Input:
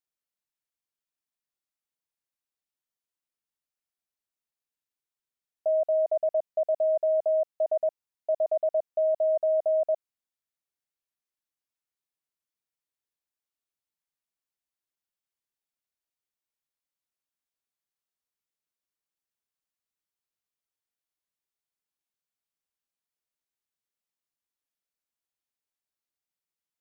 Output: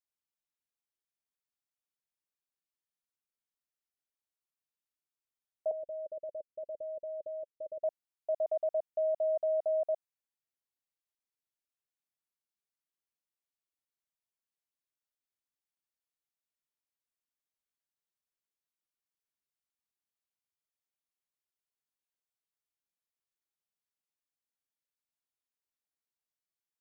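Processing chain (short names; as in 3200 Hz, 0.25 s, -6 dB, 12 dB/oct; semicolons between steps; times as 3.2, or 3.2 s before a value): 5.71–7.84 steep low-pass 590 Hz 96 dB/oct; gain -6 dB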